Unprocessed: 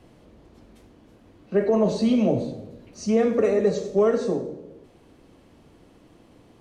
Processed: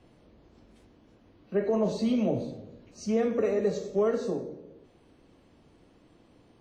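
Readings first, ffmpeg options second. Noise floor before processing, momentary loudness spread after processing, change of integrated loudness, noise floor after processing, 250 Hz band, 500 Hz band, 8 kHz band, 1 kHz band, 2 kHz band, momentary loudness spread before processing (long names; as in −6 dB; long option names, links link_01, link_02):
−55 dBFS, 13 LU, −6.0 dB, −61 dBFS, −6.0 dB, −6.0 dB, −5.5 dB, −6.0 dB, −6.0 dB, 13 LU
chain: -af "volume=-6dB" -ar 32000 -c:a wmav2 -b:a 32k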